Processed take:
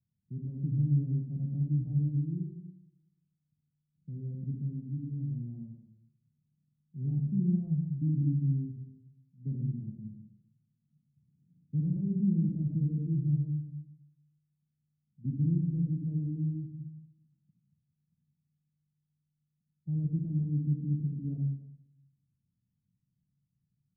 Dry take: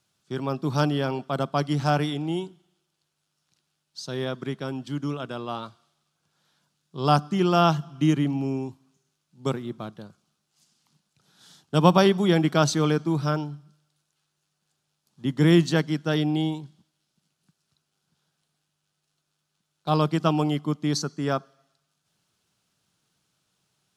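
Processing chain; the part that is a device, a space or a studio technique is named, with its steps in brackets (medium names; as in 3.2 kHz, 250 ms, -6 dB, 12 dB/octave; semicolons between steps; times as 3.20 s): club heard from the street (peak limiter -14 dBFS, peak gain reduction 11.5 dB; low-pass 190 Hz 24 dB/octave; reverberation RT60 0.75 s, pre-delay 42 ms, DRR 0.5 dB); trim -2 dB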